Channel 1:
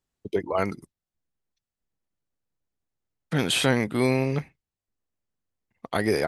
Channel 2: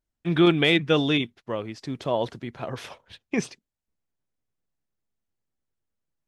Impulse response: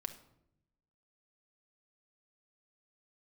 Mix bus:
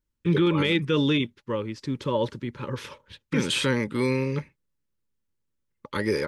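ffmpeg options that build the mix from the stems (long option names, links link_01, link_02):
-filter_complex "[0:a]agate=range=-15dB:threshold=-44dB:ratio=16:detection=peak,lowpass=8600,volume=-1.5dB[link_01];[1:a]lowshelf=frequency=390:gain=4,volume=0dB[link_02];[link_01][link_02]amix=inputs=2:normalize=0,asuperstop=centerf=710:order=20:qfactor=3.1,alimiter=limit=-13.5dB:level=0:latency=1:release=74"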